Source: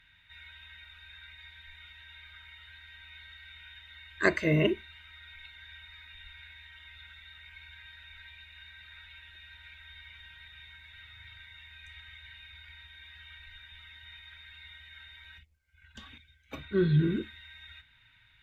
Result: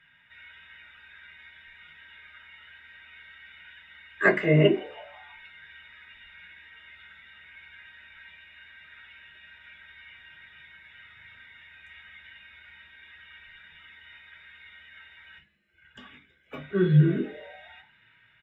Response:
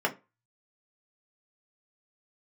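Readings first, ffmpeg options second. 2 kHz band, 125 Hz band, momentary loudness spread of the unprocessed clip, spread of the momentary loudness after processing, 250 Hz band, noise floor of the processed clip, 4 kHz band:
+4.5 dB, +6.0 dB, 22 LU, 11 LU, +4.5 dB, -61 dBFS, -0.5 dB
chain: -filter_complex "[0:a]asplit=5[a][b][c][d][e];[b]adelay=163,afreqshift=140,volume=-23dB[f];[c]adelay=326,afreqshift=280,volume=-27.6dB[g];[d]adelay=489,afreqshift=420,volume=-32.2dB[h];[e]adelay=652,afreqshift=560,volume=-36.7dB[i];[a][f][g][h][i]amix=inputs=5:normalize=0[j];[1:a]atrim=start_sample=2205[k];[j][k]afir=irnorm=-1:irlink=0,volume=-6.5dB"

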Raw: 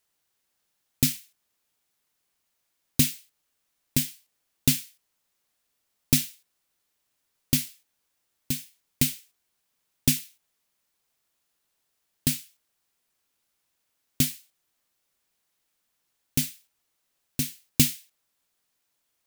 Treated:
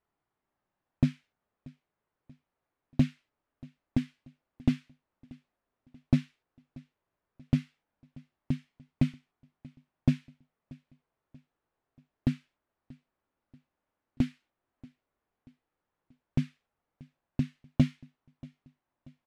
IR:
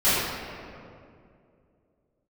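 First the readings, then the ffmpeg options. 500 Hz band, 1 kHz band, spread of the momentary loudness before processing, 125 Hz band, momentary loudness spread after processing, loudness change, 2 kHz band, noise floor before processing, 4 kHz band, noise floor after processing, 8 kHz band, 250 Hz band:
-0.5 dB, +2.0 dB, 12 LU, +0.5 dB, 11 LU, -6.0 dB, -10.5 dB, -77 dBFS, -19.0 dB, under -85 dBFS, under -30 dB, +1.0 dB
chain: -filter_complex "[0:a]lowpass=1.2k,flanger=delay=0.9:depth=2.6:regen=-75:speed=0.11:shape=sinusoidal,asoftclip=type=tanh:threshold=-17.5dB,asplit=2[a][b];[b]aecho=0:1:634|1268|1902:0.0708|0.0326|0.015[c];[a][c]amix=inputs=2:normalize=0,volume=6.5dB"

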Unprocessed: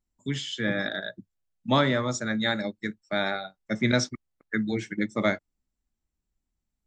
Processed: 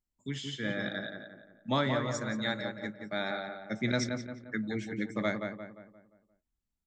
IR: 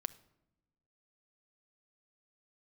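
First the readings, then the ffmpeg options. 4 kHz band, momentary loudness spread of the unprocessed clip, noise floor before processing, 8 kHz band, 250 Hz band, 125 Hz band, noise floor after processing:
-6.5 dB, 11 LU, -84 dBFS, -7.0 dB, -6.0 dB, -5.5 dB, under -85 dBFS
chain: -filter_complex "[0:a]asplit=2[a][b];[b]adelay=175,lowpass=f=2.2k:p=1,volume=-5dB,asplit=2[c][d];[d]adelay=175,lowpass=f=2.2k:p=1,volume=0.45,asplit=2[e][f];[f]adelay=175,lowpass=f=2.2k:p=1,volume=0.45,asplit=2[g][h];[h]adelay=175,lowpass=f=2.2k:p=1,volume=0.45,asplit=2[i][j];[j]adelay=175,lowpass=f=2.2k:p=1,volume=0.45,asplit=2[k][l];[l]adelay=175,lowpass=f=2.2k:p=1,volume=0.45[m];[a][c][e][g][i][k][m]amix=inputs=7:normalize=0,volume=-7dB"

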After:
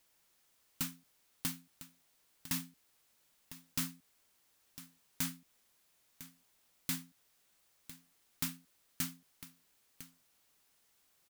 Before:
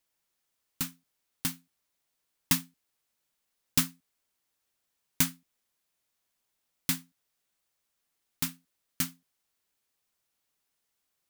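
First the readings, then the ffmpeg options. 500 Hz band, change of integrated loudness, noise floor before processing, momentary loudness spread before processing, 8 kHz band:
-8.5 dB, -9.5 dB, -81 dBFS, 8 LU, -8.0 dB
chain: -af "alimiter=limit=-16dB:level=0:latency=1:release=50,acompressor=threshold=-38dB:ratio=6,aecho=1:1:1004:0.119,asoftclip=type=tanh:threshold=-34dB,volume=8dB"

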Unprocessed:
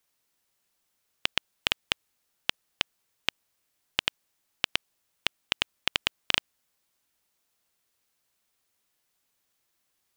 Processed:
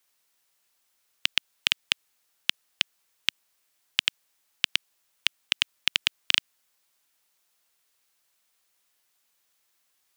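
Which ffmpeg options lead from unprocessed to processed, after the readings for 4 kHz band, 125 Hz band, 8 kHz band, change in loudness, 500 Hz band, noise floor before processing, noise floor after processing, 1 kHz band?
+4.0 dB, n/a, +4.5 dB, +3.5 dB, -9.5 dB, -77 dBFS, -72 dBFS, -5.5 dB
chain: -filter_complex "[0:a]acrossover=split=260|1700[a][b][c];[b]alimiter=level_in=4.5dB:limit=-24dB:level=0:latency=1:release=76,volume=-4.5dB[d];[a][d][c]amix=inputs=3:normalize=0,lowshelf=f=440:g=-10.5,volume=4.5dB"

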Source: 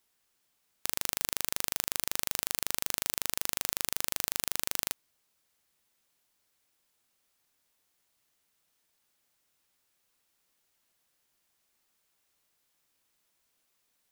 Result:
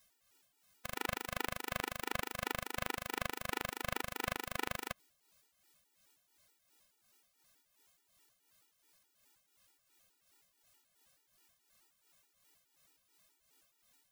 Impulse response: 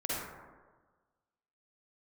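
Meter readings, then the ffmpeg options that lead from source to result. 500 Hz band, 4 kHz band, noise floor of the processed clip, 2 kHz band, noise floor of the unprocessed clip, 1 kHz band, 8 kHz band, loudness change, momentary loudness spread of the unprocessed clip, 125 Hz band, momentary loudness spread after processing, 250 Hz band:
+3.0 dB, -8.0 dB, -78 dBFS, +0.5 dB, -76 dBFS, +2.5 dB, -14.5 dB, -8.0 dB, 2 LU, +3.0 dB, 3 LU, +2.5 dB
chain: -filter_complex "[0:a]tremolo=f=2.8:d=0.6,acrossover=split=2700[a][b];[b]acompressor=threshold=-41dB:ratio=4:attack=1:release=60[c];[a][c]amix=inputs=2:normalize=0,afftfilt=real='re*gt(sin(2*PI*4.7*pts/sr)*(1-2*mod(floor(b*sr/1024/250),2)),0)':imag='im*gt(sin(2*PI*4.7*pts/sr)*(1-2*mod(floor(b*sr/1024/250),2)),0)':win_size=1024:overlap=0.75,volume=9dB"

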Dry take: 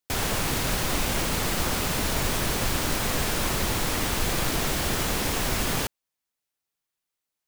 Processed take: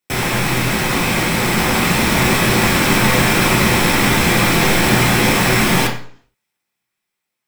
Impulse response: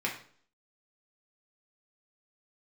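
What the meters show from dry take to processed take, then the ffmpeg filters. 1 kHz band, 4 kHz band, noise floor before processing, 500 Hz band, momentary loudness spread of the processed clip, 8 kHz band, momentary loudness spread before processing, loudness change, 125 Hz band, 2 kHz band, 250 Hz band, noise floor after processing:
+12.5 dB, +10.0 dB, under -85 dBFS, +12.0 dB, 4 LU, +7.5 dB, 0 LU, +11.5 dB, +12.5 dB, +15.0 dB, +14.5 dB, -79 dBFS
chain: -filter_complex "[0:a]dynaudnorm=f=690:g=5:m=4dB[a];[1:a]atrim=start_sample=2205[b];[a][b]afir=irnorm=-1:irlink=0,volume=4dB"

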